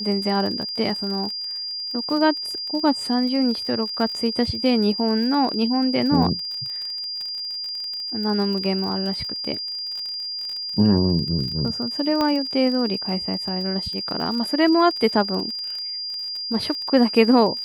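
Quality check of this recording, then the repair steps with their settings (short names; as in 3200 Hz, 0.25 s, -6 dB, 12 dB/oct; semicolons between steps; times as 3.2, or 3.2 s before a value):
crackle 36/s -29 dBFS
tone 4800 Hz -27 dBFS
12.21 pop -11 dBFS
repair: de-click; notch 4800 Hz, Q 30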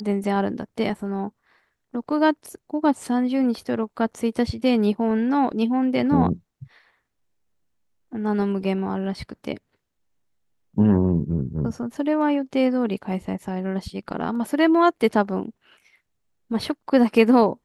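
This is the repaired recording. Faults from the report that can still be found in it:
12.21 pop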